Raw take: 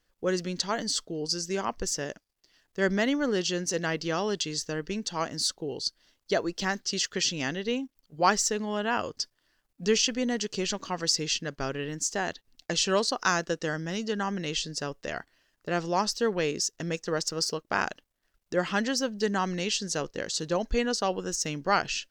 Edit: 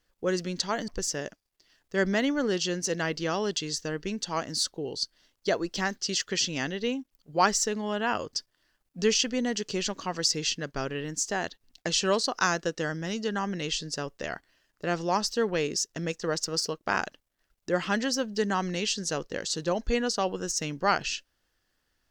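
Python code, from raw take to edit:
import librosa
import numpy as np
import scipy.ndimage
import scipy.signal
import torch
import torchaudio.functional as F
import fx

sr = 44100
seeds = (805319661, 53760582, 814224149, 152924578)

y = fx.edit(x, sr, fx.cut(start_s=0.88, length_s=0.84), tone=tone)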